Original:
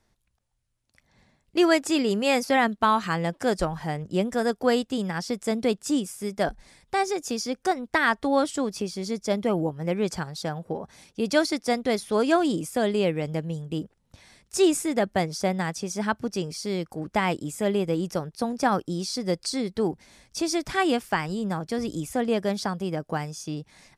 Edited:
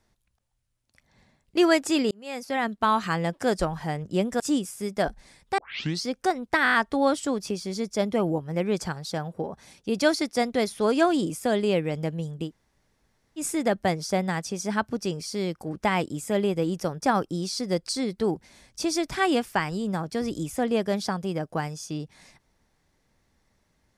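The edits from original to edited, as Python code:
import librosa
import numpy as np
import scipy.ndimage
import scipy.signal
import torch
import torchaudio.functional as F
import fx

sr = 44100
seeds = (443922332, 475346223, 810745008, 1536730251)

y = fx.edit(x, sr, fx.fade_in_span(start_s=2.11, length_s=0.9),
    fx.cut(start_s=4.4, length_s=1.41),
    fx.tape_start(start_s=6.99, length_s=0.47),
    fx.stutter(start_s=8.05, slice_s=0.02, count=6),
    fx.room_tone_fill(start_s=13.78, length_s=0.94, crossfade_s=0.1),
    fx.cut(start_s=18.33, length_s=0.26), tone=tone)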